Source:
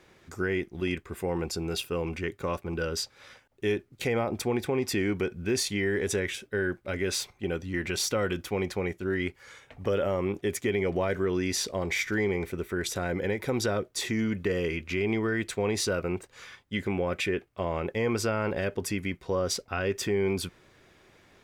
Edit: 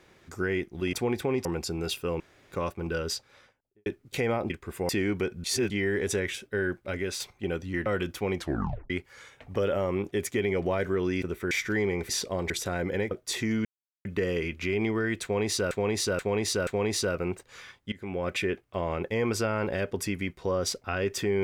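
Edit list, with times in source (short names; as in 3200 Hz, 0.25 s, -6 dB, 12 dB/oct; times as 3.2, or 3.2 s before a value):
0.93–1.32 swap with 4.37–4.89
2.07–2.39 room tone
2.95–3.73 studio fade out
5.44–5.7 reverse
6.8–7.2 fade out equal-power, to -6.5 dB
7.86–8.16 cut
8.67 tape stop 0.53 s
11.52–11.93 swap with 12.51–12.8
13.41–13.79 cut
14.33 insert silence 0.40 s
15.51–15.99 loop, 4 plays
16.76–17.14 fade in, from -21.5 dB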